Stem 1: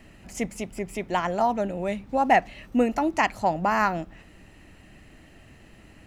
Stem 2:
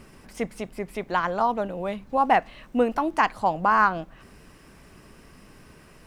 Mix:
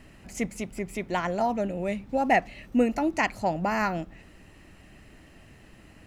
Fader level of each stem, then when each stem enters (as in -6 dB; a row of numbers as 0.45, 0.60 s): -1.5, -12.0 dB; 0.00, 0.00 s